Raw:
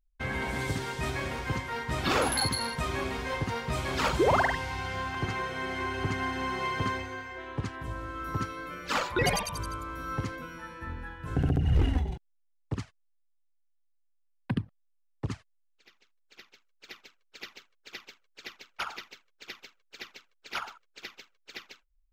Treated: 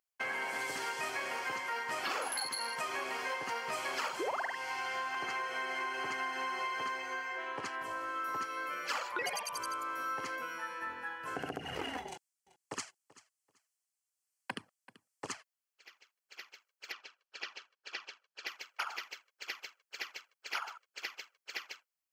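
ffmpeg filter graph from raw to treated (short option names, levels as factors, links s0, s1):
-filter_complex "[0:a]asettb=1/sr,asplit=3[s0][s1][s2];[s0]atrim=end=12.084[s3];[s1]atrim=start=12.08:end=15.32,asetpts=PTS-STARTPTS,afade=t=in:d=0.004:c=qsin,afade=t=out:st=3.236:d=0.004:c=qsin,equalizer=f=7900:w=0.88:g=12,tremolo=f=1.3:d=0.34,aecho=1:1:385|770:0.0891|0.0196,atrim=end_sample=142884[s4];[s2]atrim=start=15.316[s5];[s3][s4]acrossfade=d=0.004:c1=hsin:c2=qsin[s6];[s6][s5]acrossfade=d=0.004:c1=qsin:c2=hsin,asettb=1/sr,asplit=3[s7][s8][s9];[s7]atrim=end=16.924[s10];[s8]atrim=start=16.92:end=18.47,asetpts=PTS-STARTPTS,afade=t=in:d=0.004:c=qsin,afade=t=out:st=1.546:d=0.004:c=qsin,highpass=120,lowpass=5400,bandreject=f=2100:w=7.9[s11];[s9]atrim=start=18.466[s12];[s10][s11]acrossfade=d=0.004:c1=hsin:c2=qsin[s13];[s13][s12]acrossfade=d=0.004:c1=qsin:c2=hsin,highpass=600,bandreject=f=3700:w=5.6,acompressor=threshold=0.0126:ratio=6,volume=1.58"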